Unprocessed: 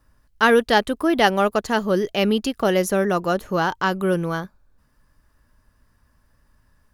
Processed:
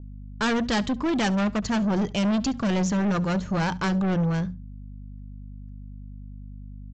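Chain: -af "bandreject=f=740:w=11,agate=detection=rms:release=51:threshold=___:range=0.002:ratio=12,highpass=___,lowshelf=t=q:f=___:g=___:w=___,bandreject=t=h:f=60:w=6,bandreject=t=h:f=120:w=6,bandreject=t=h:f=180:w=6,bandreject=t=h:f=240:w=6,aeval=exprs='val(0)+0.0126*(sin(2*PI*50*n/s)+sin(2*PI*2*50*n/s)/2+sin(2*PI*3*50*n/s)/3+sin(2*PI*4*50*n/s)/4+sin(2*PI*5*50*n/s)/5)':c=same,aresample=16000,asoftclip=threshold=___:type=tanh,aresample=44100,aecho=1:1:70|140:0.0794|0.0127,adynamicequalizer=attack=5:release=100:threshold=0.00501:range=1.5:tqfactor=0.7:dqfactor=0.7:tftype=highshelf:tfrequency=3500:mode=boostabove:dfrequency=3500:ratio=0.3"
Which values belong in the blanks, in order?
0.00316, 40, 280, 8.5, 1.5, 0.0891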